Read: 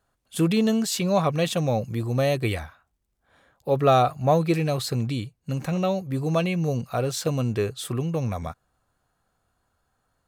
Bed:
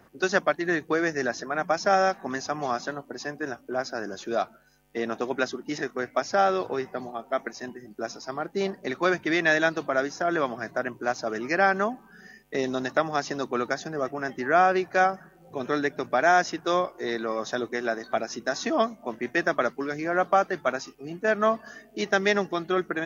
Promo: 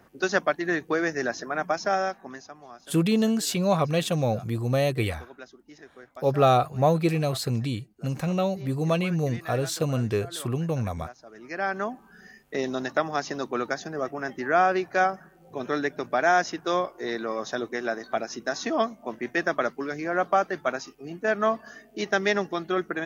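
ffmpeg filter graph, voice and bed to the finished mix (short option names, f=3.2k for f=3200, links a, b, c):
-filter_complex "[0:a]adelay=2550,volume=-1dB[a];[1:a]volume=16.5dB,afade=t=out:st=1.6:d=0.98:silence=0.133352,afade=t=in:st=11.32:d=0.77:silence=0.141254[b];[a][b]amix=inputs=2:normalize=0"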